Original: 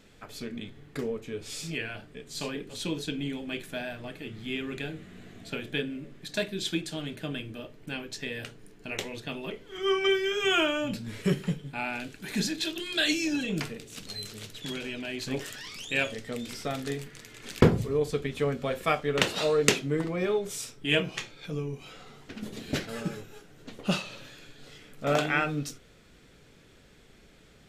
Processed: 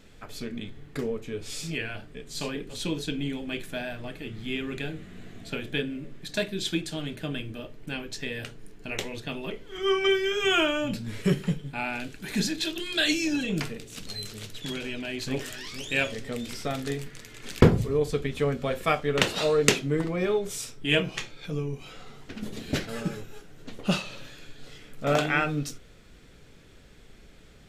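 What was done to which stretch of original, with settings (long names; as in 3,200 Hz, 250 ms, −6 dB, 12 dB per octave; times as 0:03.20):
0:14.89–0:15.73: delay throw 460 ms, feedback 45%, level −12.5 dB
whole clip: low-shelf EQ 62 Hz +9 dB; level +1.5 dB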